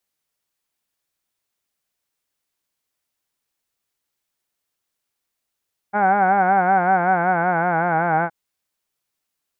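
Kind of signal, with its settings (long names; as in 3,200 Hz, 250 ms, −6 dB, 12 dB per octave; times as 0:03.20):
vowel from formants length 2.37 s, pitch 199 Hz, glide −3.5 semitones, F1 770 Hz, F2 1,500 Hz, F3 2,200 Hz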